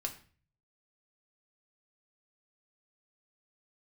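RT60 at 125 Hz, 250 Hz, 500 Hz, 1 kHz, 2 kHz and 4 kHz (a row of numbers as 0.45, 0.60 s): 0.85, 0.55, 0.40, 0.40, 0.40, 0.40 s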